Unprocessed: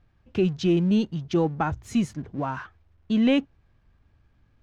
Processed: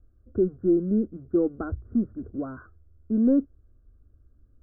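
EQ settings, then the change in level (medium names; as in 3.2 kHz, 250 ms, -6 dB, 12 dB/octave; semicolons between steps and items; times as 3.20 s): steep low-pass 1.5 kHz 96 dB/octave; bass shelf 280 Hz +9.5 dB; static phaser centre 370 Hz, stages 4; -2.0 dB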